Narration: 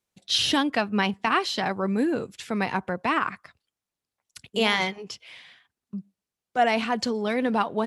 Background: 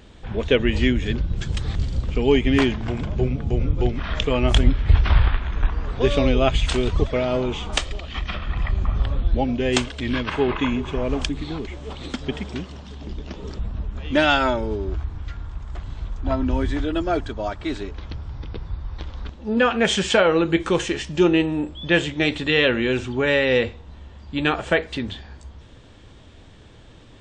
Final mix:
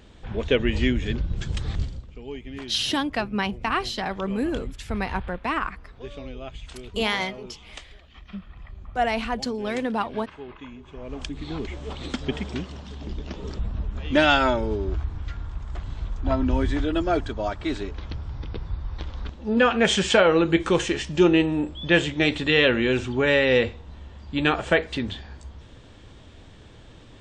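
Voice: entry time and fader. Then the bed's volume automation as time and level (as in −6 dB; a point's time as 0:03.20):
2.40 s, −2.0 dB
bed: 0:01.82 −3 dB
0:02.08 −19 dB
0:10.79 −19 dB
0:11.62 −0.5 dB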